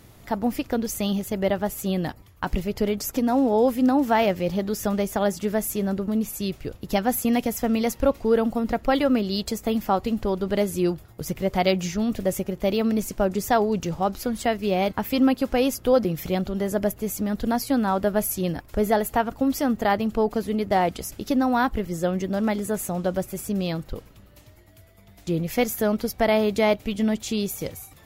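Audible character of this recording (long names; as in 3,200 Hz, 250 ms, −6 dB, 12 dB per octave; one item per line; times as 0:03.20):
background noise floor −50 dBFS
spectral slope −5.5 dB per octave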